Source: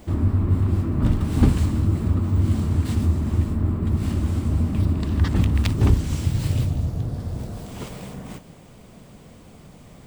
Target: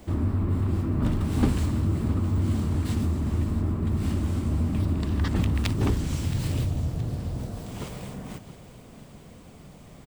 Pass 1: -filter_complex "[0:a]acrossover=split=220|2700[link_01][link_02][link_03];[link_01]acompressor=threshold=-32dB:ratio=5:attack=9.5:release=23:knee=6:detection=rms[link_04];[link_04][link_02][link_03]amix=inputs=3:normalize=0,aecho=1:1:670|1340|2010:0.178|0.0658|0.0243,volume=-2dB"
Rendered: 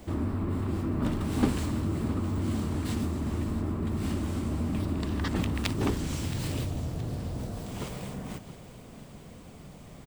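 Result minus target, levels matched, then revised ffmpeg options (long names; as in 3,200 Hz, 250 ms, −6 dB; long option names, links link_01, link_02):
downward compressor: peak gain reduction +8.5 dB
-filter_complex "[0:a]acrossover=split=220|2700[link_01][link_02][link_03];[link_01]acompressor=threshold=-21.5dB:ratio=5:attack=9.5:release=23:knee=6:detection=rms[link_04];[link_04][link_02][link_03]amix=inputs=3:normalize=0,aecho=1:1:670|1340|2010:0.178|0.0658|0.0243,volume=-2dB"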